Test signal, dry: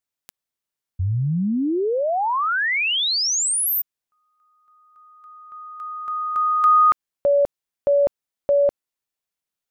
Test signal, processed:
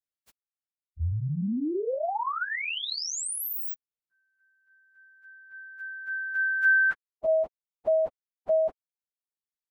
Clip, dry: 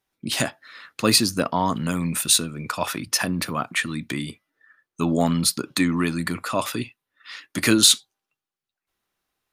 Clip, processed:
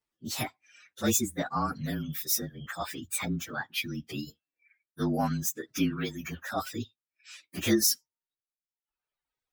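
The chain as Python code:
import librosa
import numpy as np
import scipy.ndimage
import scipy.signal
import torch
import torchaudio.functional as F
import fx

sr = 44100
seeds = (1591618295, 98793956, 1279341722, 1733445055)

y = fx.partial_stretch(x, sr, pct=114)
y = fx.dereverb_blind(y, sr, rt60_s=1.2)
y = F.gain(torch.from_numpy(y), -4.5).numpy()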